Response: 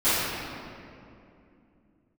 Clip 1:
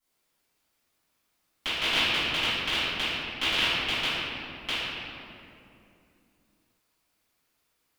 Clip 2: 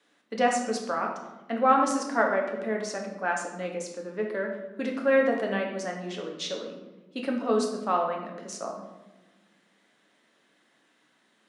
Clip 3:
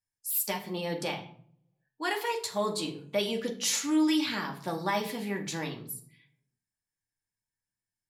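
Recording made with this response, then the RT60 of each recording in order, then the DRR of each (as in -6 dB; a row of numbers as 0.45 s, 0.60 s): 1; 2.6 s, 1.2 s, 0.55 s; -18.5 dB, 0.5 dB, 1.0 dB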